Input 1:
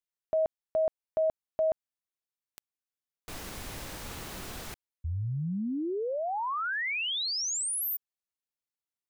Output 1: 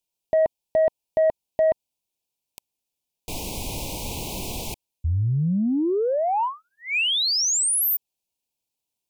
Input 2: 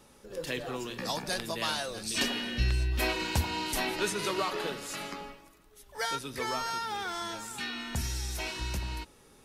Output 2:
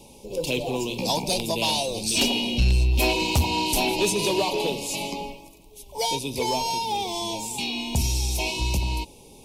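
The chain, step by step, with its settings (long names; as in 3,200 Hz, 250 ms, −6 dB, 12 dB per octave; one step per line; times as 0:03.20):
elliptic band-stop filter 960–2,400 Hz, stop band 50 dB
in parallel at −4.5 dB: sine wavefolder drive 8 dB, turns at −15 dBFS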